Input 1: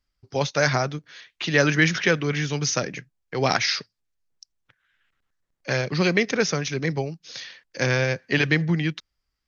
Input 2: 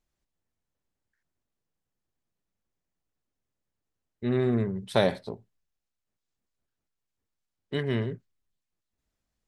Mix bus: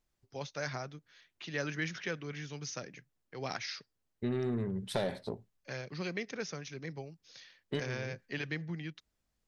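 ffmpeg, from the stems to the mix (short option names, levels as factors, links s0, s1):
-filter_complex "[0:a]volume=0.141,asplit=2[s0][s1];[1:a]asoftclip=type=tanh:threshold=0.133,acompressor=threshold=0.0282:ratio=4,volume=1[s2];[s1]apad=whole_len=417976[s3];[s2][s3]sidechaincompress=threshold=0.00398:ratio=8:attack=16:release=116[s4];[s0][s4]amix=inputs=2:normalize=0"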